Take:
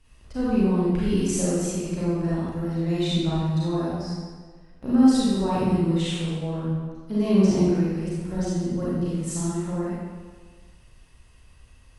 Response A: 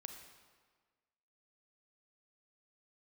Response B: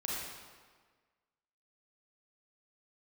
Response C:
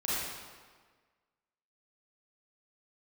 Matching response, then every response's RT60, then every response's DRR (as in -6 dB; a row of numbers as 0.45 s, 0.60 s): C; 1.5 s, 1.5 s, 1.5 s; 4.5 dB, -5.5 dB, -9.5 dB